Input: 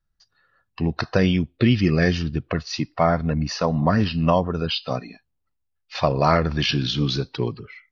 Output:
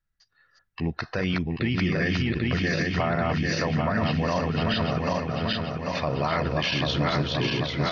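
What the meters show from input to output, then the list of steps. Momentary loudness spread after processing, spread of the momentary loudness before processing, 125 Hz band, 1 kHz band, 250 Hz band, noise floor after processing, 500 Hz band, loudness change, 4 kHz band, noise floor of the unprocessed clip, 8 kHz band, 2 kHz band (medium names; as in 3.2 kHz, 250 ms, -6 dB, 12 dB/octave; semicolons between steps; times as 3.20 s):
4 LU, 9 LU, -3.5 dB, -3.5 dB, -4.0 dB, -71 dBFS, -4.0 dB, -3.5 dB, -2.0 dB, -75 dBFS, no reading, +1.5 dB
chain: backward echo that repeats 395 ms, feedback 75%, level -2.5 dB; peaking EQ 2 kHz +8 dB 0.78 oct; peak limiter -10.5 dBFS, peak gain reduction 8 dB; trim -5 dB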